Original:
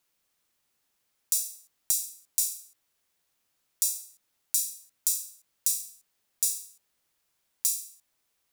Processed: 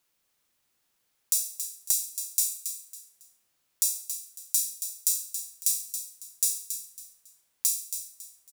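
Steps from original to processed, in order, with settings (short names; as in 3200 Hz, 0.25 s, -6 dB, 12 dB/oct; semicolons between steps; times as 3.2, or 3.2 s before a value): feedback echo 0.276 s, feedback 29%, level -9 dB; gain +1 dB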